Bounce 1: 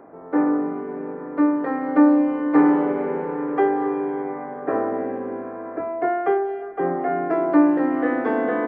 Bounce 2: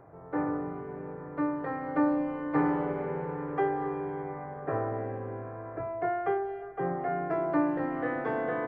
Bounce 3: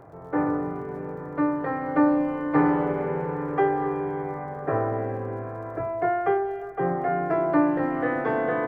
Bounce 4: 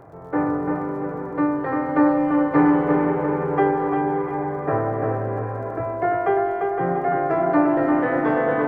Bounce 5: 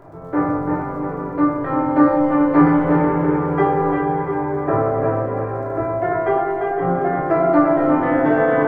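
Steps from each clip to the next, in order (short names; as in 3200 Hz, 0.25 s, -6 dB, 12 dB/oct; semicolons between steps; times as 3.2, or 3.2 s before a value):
resonant low shelf 170 Hz +11 dB, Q 3; gain -7 dB
crackle 71/s -58 dBFS; gain +6 dB
tape echo 0.343 s, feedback 55%, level -3 dB, low-pass 2300 Hz; gain +2.5 dB
shoebox room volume 480 m³, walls furnished, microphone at 2.9 m; gain -1 dB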